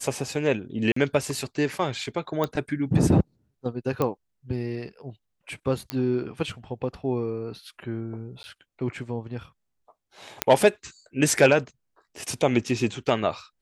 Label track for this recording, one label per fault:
0.920000	0.960000	gap 44 ms
2.440000	2.440000	pop -13 dBFS
4.020000	4.020000	pop -12 dBFS
5.900000	5.900000	pop -12 dBFS
8.430000	8.440000	gap 10 ms
10.420000	10.420000	pop -3 dBFS

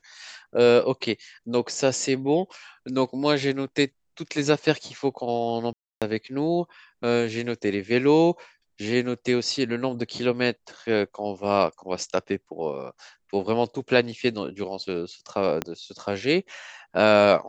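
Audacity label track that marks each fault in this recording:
5.730000	6.020000	gap 0.287 s
15.620000	15.620000	pop -11 dBFS

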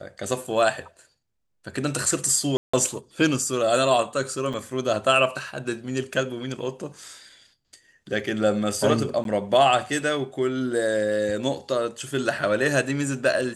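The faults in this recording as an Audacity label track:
2.570000	2.730000	gap 0.165 s
4.530000	4.540000	gap 5.9 ms
9.240000	9.250000	gap

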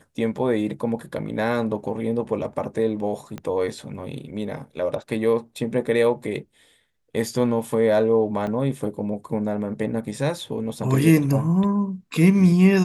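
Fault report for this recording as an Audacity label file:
3.380000	3.380000	pop -19 dBFS
8.470000	8.470000	gap 2.9 ms

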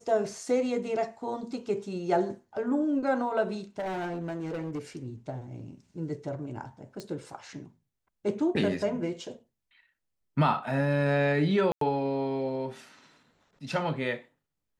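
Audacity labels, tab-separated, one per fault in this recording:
3.780000	5.030000	clipped -30 dBFS
7.000000	7.000000	pop -24 dBFS
11.720000	11.810000	gap 93 ms

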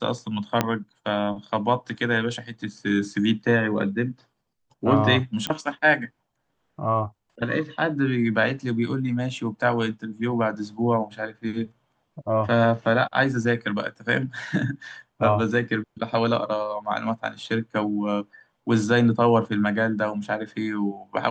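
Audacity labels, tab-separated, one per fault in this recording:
0.610000	0.610000	pop -6 dBFS
5.470000	5.470000	pop -11 dBFS

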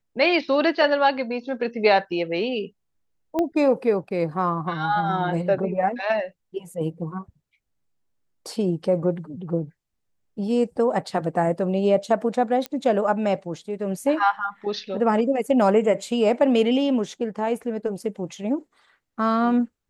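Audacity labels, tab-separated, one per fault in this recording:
3.390000	3.390000	pop -13 dBFS
12.660000	12.660000	pop -14 dBFS

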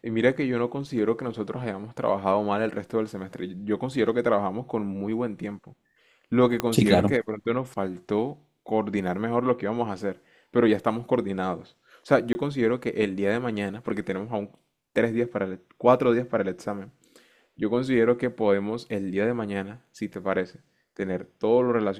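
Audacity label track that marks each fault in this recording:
6.600000	6.600000	pop -10 dBFS
12.330000	12.350000	gap 20 ms

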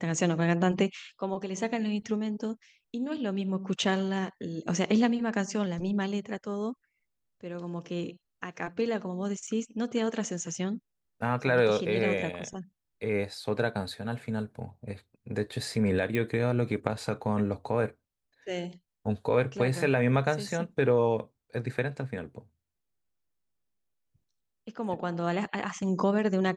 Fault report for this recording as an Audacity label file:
9.470000	9.470000	gap 4.2 ms
16.150000	16.150000	pop -18 dBFS

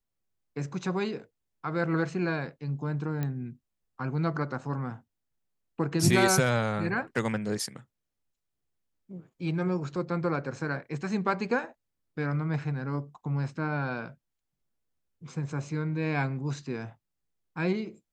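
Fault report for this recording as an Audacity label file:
3.230000	3.230000	pop -19 dBFS

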